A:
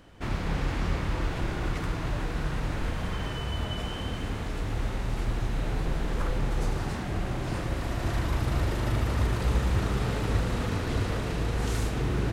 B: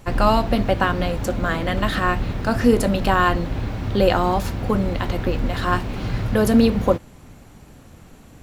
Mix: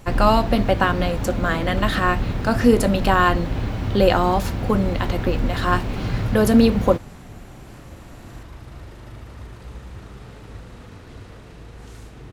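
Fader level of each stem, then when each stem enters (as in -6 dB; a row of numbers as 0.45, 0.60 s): -12.0, +1.0 dB; 0.20, 0.00 s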